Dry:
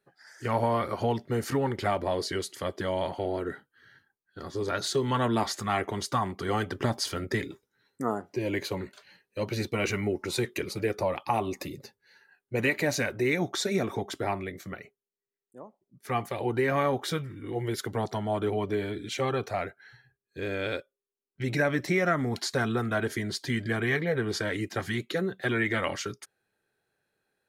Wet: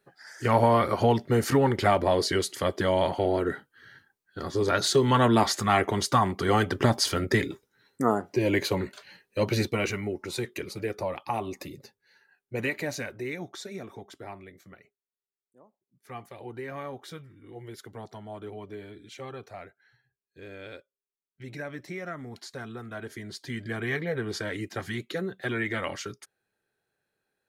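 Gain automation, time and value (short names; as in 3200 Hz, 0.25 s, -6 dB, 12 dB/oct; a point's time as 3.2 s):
9.56 s +5.5 dB
10.01 s -3 dB
12.61 s -3 dB
13.74 s -11.5 dB
22.8 s -11.5 dB
23.94 s -2.5 dB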